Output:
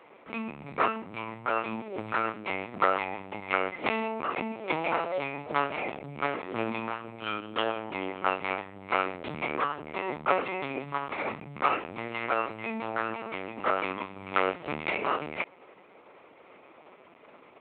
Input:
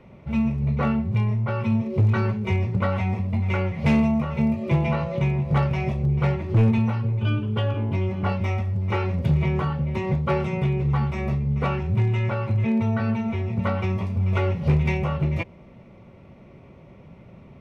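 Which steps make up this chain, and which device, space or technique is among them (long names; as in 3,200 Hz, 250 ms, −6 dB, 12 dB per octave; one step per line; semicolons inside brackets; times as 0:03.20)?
talking toy (linear-prediction vocoder at 8 kHz pitch kept; high-pass filter 560 Hz 12 dB per octave; parametric band 1,300 Hz +5.5 dB 0.23 octaves)
level +2.5 dB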